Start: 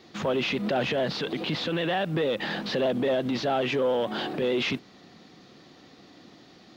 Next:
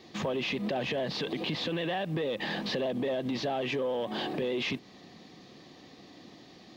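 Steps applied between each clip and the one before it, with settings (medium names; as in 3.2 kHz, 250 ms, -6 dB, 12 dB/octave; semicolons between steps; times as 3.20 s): band-stop 1.4 kHz, Q 5.2; compression 3:1, threshold -30 dBFS, peak gain reduction 6.5 dB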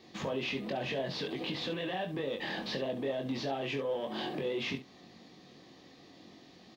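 early reflections 22 ms -4.5 dB, 69 ms -11.5 dB; trim -5 dB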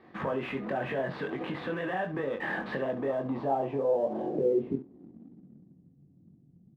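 low-pass sweep 1.5 kHz -> 150 Hz, 2.90–5.97 s; in parallel at -9 dB: crossover distortion -51.5 dBFS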